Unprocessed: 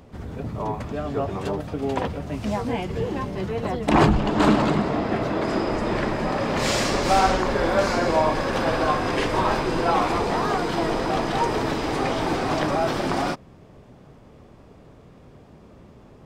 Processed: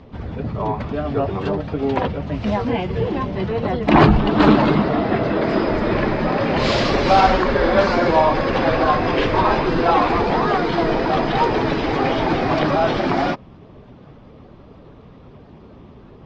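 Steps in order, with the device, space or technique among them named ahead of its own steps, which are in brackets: clip after many re-uploads (low-pass 4.6 kHz 24 dB/octave; coarse spectral quantiser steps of 15 dB); trim +5.5 dB

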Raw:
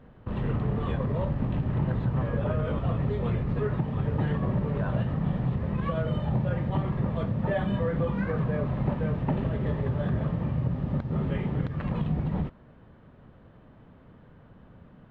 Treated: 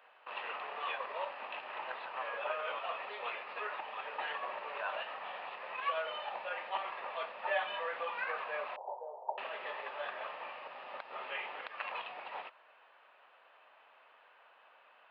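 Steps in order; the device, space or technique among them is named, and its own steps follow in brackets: 8.76–9.38 s: Chebyshev band-pass 390–930 Hz, order 4; musical greeting card (resampled via 11.025 kHz; high-pass 720 Hz 24 dB/octave; peaking EQ 2.6 kHz +11 dB 0.32 oct); trim +1 dB

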